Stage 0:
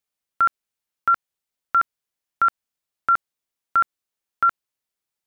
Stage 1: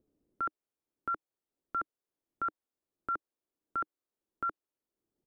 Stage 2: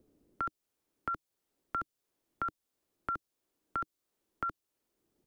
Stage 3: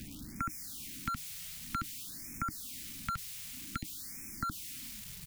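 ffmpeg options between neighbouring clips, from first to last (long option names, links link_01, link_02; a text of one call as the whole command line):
ffmpeg -i in.wav -filter_complex "[0:a]firequalizer=gain_entry='entry(170,0);entry(310,12);entry(790,5);entry(2200,-4)':delay=0.05:min_phase=1,acrossover=split=360[link_01][link_02];[link_01]acompressor=mode=upward:threshold=-48dB:ratio=2.5[link_03];[link_02]alimiter=limit=-19.5dB:level=0:latency=1:release=45[link_04];[link_03][link_04]amix=inputs=2:normalize=0,volume=-8.5dB" out.wav
ffmpeg -i in.wav -filter_complex "[0:a]acrossover=split=190|3000[link_01][link_02][link_03];[link_02]acompressor=threshold=-48dB:ratio=3[link_04];[link_01][link_04][link_03]amix=inputs=3:normalize=0,volume=9dB" out.wav
ffmpeg -i in.wav -af "aeval=exprs='val(0)+0.5*0.00501*sgn(val(0))':channel_layout=same,firequalizer=gain_entry='entry(250,0);entry(410,-25);entry(2200,0)':delay=0.05:min_phase=1,afftfilt=real='re*(1-between(b*sr/1024,250*pow(3700/250,0.5+0.5*sin(2*PI*0.53*pts/sr))/1.41,250*pow(3700/250,0.5+0.5*sin(2*PI*0.53*pts/sr))*1.41))':imag='im*(1-between(b*sr/1024,250*pow(3700/250,0.5+0.5*sin(2*PI*0.53*pts/sr))/1.41,250*pow(3700/250,0.5+0.5*sin(2*PI*0.53*pts/sr))*1.41))':win_size=1024:overlap=0.75,volume=9dB" out.wav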